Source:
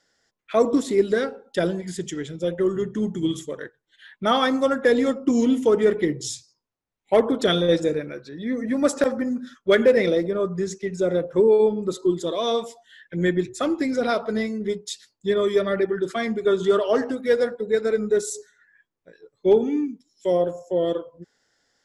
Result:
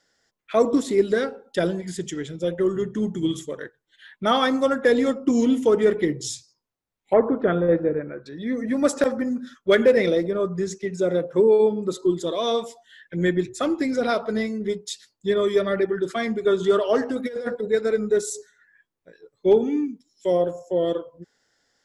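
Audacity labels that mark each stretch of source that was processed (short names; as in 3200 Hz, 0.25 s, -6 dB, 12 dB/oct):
7.130000	8.260000	LPF 1800 Hz 24 dB/oct
10.850000	11.960000	HPF 91 Hz
17.130000	17.680000	negative-ratio compressor -28 dBFS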